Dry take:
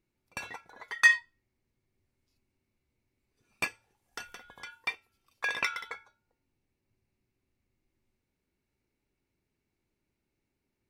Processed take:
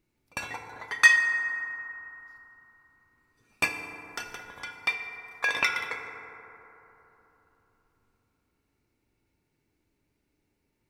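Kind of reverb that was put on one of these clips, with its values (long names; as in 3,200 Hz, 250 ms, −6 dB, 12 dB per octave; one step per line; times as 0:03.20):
feedback delay network reverb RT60 3.6 s, high-frequency decay 0.3×, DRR 4.5 dB
level +4.5 dB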